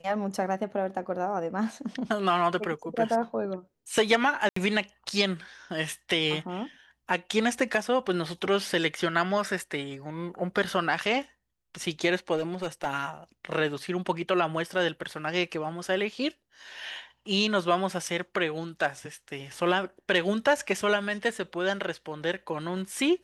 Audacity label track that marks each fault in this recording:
4.490000	4.560000	drop-out 74 ms
12.360000	12.870000	clipping −24.5 dBFS

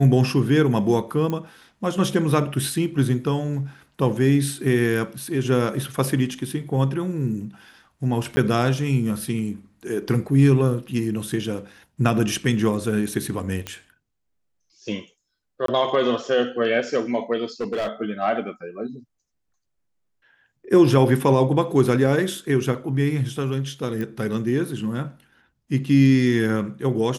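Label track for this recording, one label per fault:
1.300000	1.300000	click −15 dBFS
8.360000	8.370000	drop-out 10 ms
13.670000	13.670000	click −14 dBFS
15.660000	15.680000	drop-out 23 ms
17.610000	17.880000	clipping −21.5 dBFS
24.010000	24.010000	click −18 dBFS

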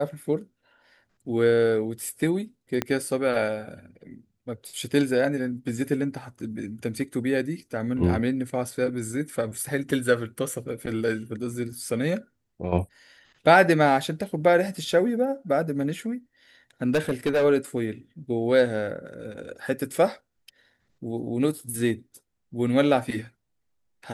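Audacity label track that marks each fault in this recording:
2.820000	2.820000	click −10 dBFS
16.950000	17.450000	clipping −18 dBFS

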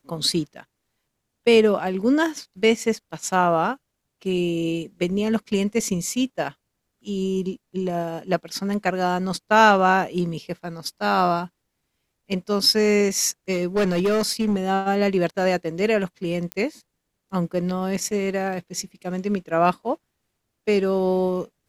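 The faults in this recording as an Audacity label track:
13.520000	14.560000	clipping −16.5 dBFS
16.520000	16.520000	click −13 dBFS

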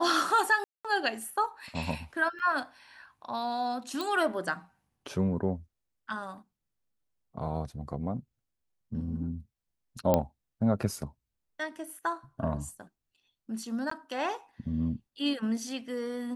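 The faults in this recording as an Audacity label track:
0.640000	0.850000	drop-out 206 ms
2.390000	2.400000	drop-out 7 ms
4.010000	4.010000	click
10.140000	10.140000	click −11 dBFS
13.900000	13.910000	drop-out 14 ms

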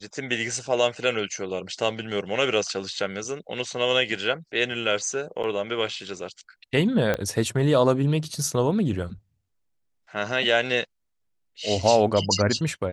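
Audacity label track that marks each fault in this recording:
5.430000	5.440000	drop-out 8.1 ms
7.140000	7.140000	click −11 dBFS

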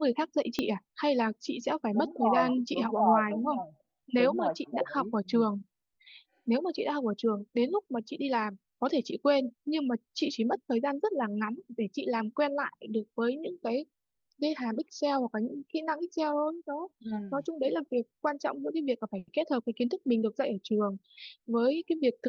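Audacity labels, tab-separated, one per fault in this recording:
0.590000	0.590000	click −16 dBFS

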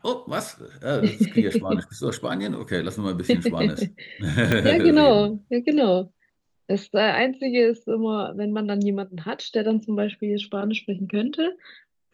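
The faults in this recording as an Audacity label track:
4.520000	4.520000	click −8 dBFS

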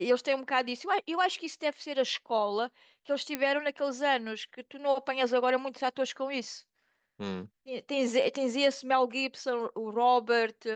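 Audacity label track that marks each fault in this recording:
3.350000	3.350000	click −14 dBFS

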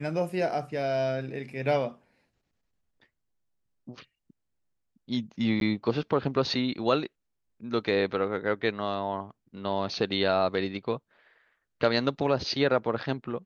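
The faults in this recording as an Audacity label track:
5.600000	5.610000	drop-out 12 ms

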